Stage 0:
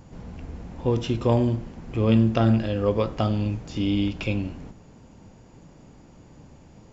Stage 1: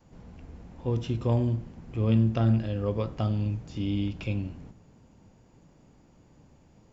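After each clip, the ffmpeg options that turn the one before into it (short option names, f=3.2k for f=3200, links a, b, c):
-af "adynamicequalizer=threshold=0.0178:dfrequency=110:dqfactor=0.75:tfrequency=110:tqfactor=0.75:attack=5:release=100:ratio=0.375:range=3.5:mode=boostabove:tftype=bell,volume=-8.5dB"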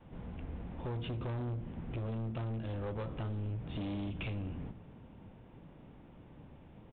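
-af "acompressor=threshold=-32dB:ratio=12,aresample=8000,asoftclip=type=hard:threshold=-38dB,aresample=44100,volume=3dB"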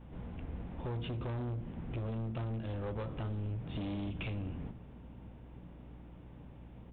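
-af "aeval=exprs='val(0)+0.00251*(sin(2*PI*60*n/s)+sin(2*PI*2*60*n/s)/2+sin(2*PI*3*60*n/s)/3+sin(2*PI*4*60*n/s)/4+sin(2*PI*5*60*n/s)/5)':c=same"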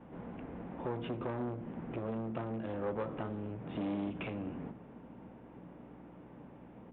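-filter_complex "[0:a]acrossover=split=170 2300:gain=0.1 1 0.158[a][b][c];[a][b][c]amix=inputs=3:normalize=0,volume=5dB"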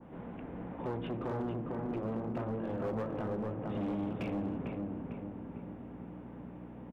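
-filter_complex "[0:a]asplit=2[a][b];[b]adelay=450,lowpass=f=1.8k:p=1,volume=-3dB,asplit=2[c][d];[d]adelay=450,lowpass=f=1.8k:p=1,volume=0.54,asplit=2[e][f];[f]adelay=450,lowpass=f=1.8k:p=1,volume=0.54,asplit=2[g][h];[h]adelay=450,lowpass=f=1.8k:p=1,volume=0.54,asplit=2[i][j];[j]adelay=450,lowpass=f=1.8k:p=1,volume=0.54,asplit=2[k][l];[l]adelay=450,lowpass=f=1.8k:p=1,volume=0.54,asplit=2[m][n];[n]adelay=450,lowpass=f=1.8k:p=1,volume=0.54[o];[a][c][e][g][i][k][m][o]amix=inputs=8:normalize=0,asoftclip=type=hard:threshold=-31dB,adynamicequalizer=threshold=0.00141:dfrequency=3100:dqfactor=0.73:tfrequency=3100:tqfactor=0.73:attack=5:release=100:ratio=0.375:range=2:mode=cutabove:tftype=bell,volume=1dB"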